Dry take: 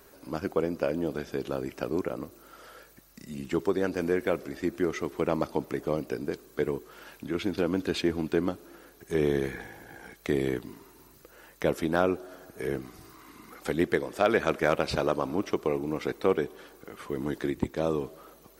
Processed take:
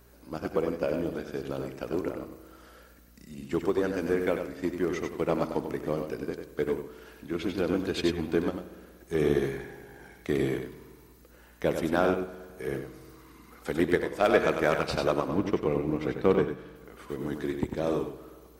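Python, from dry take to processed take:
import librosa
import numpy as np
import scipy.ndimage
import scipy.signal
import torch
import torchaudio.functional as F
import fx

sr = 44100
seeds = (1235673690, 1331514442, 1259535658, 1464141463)

p1 = fx.bass_treble(x, sr, bass_db=7, treble_db=-7, at=(15.28, 16.76))
p2 = fx.rev_spring(p1, sr, rt60_s=1.7, pass_ms=(59,), chirp_ms=60, drr_db=11.5)
p3 = np.clip(p2, -10.0 ** (-26.5 / 20.0), 10.0 ** (-26.5 / 20.0))
p4 = p2 + (p3 * 10.0 ** (-8.0 / 20.0))
p5 = fx.add_hum(p4, sr, base_hz=60, snr_db=23)
p6 = p5 + 10.0 ** (-5.0 / 20.0) * np.pad(p5, (int(96 * sr / 1000.0), 0))[:len(p5)]
y = fx.upward_expand(p6, sr, threshold_db=-34.0, expansion=1.5)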